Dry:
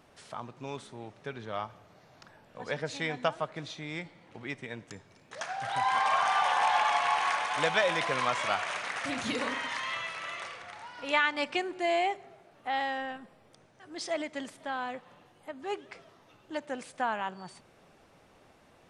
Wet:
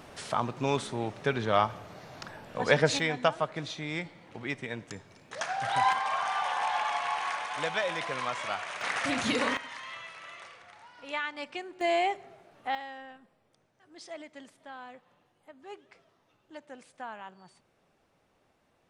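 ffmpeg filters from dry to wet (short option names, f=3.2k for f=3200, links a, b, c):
-af "asetnsamples=n=441:p=0,asendcmd='2.99 volume volume 3.5dB;5.93 volume volume -4dB;8.81 volume volume 4dB;9.57 volume volume -7.5dB;11.81 volume volume 1dB;12.75 volume volume -10dB',volume=11dB"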